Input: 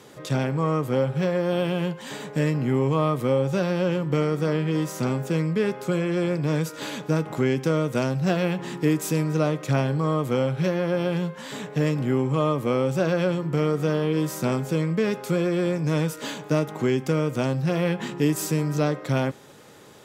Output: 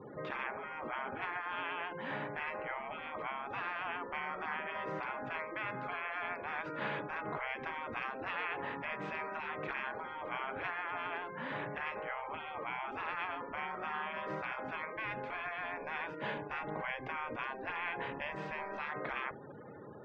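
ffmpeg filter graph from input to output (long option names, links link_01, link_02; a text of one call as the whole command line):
ffmpeg -i in.wav -filter_complex "[0:a]asettb=1/sr,asplit=3[link_01][link_02][link_03];[link_01]atrim=end=14.964[link_04];[link_02]atrim=start=14.96:end=18.85,asetpts=PTS-STARTPTS,afade=type=in:duration=0.004:curve=qsin,afade=type=out:start_time=3.886:duration=0.004:curve=qsin,bandreject=frequency=1300:width=5.9,aeval=exprs='sgn(val(0))*max(abs(val(0))-0.00355,0)':channel_layout=same[link_05];[link_03]atrim=start=18.846[link_06];[link_04][link_05]acrossfade=duration=0.004:curve1=hsin:curve2=qsin[link_07];[link_07][link_06]acrossfade=duration=0.004:curve1=qsin:curve2=hsin,afftfilt=real='re*gte(hypot(re,im),0.00501)':imag='im*gte(hypot(re,im),0.00501)':win_size=1024:overlap=0.75,lowpass=frequency=2300:width=0.5412,lowpass=frequency=2300:width=1.3066,afftfilt=real='re*lt(hypot(re,im),0.0794)':imag='im*lt(hypot(re,im),0.0794)':win_size=1024:overlap=0.75" out.wav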